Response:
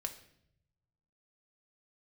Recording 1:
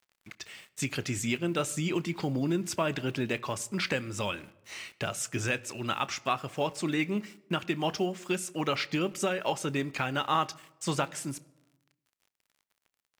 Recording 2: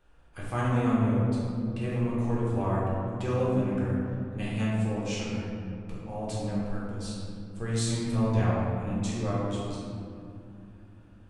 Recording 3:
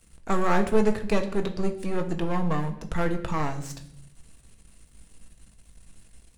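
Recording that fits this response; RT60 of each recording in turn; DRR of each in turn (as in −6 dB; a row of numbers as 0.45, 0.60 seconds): 3; 1.1, 2.7, 0.70 seconds; 16.5, −7.5, 5.0 decibels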